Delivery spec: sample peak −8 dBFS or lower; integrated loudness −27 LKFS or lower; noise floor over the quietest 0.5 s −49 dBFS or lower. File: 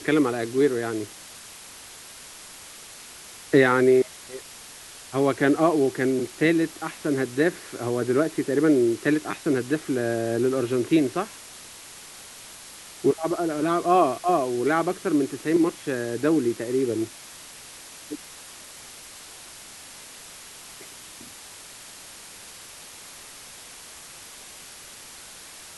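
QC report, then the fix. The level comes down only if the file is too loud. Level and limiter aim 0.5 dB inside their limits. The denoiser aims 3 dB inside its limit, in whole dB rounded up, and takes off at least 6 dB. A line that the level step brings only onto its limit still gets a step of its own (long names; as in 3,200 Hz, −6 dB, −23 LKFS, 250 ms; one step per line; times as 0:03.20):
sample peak −5.5 dBFS: out of spec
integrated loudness −23.5 LKFS: out of spec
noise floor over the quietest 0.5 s −44 dBFS: out of spec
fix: broadband denoise 6 dB, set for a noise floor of −44 dBFS
level −4 dB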